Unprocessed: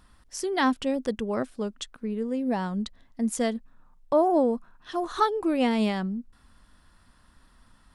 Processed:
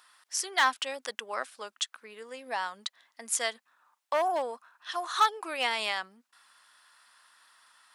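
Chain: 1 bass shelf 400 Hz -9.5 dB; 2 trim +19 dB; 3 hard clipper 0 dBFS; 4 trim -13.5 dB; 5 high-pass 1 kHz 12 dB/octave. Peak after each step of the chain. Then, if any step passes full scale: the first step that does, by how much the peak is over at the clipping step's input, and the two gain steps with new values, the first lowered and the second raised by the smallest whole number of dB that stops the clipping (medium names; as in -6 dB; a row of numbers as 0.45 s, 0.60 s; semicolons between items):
-12.5 dBFS, +6.5 dBFS, 0.0 dBFS, -13.5 dBFS, -11.0 dBFS; step 2, 6.5 dB; step 2 +12 dB, step 4 -6.5 dB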